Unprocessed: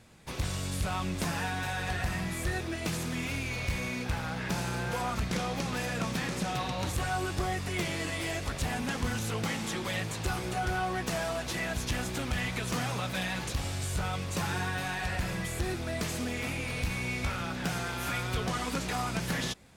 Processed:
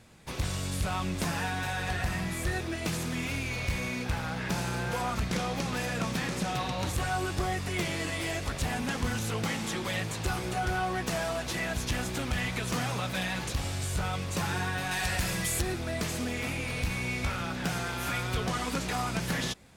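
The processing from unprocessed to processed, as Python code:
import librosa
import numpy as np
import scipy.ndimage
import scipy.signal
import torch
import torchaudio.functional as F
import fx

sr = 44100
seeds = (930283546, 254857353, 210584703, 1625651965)

y = fx.high_shelf(x, sr, hz=3600.0, db=11.0, at=(14.91, 15.62))
y = F.gain(torch.from_numpy(y), 1.0).numpy()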